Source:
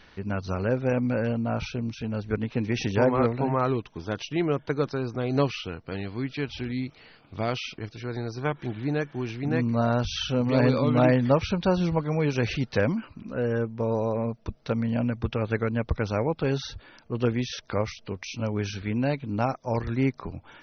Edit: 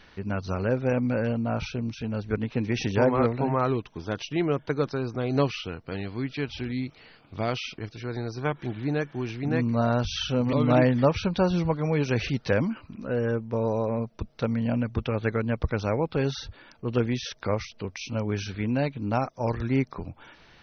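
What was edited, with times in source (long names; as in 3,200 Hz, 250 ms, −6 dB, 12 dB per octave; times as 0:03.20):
0:10.53–0:10.80: remove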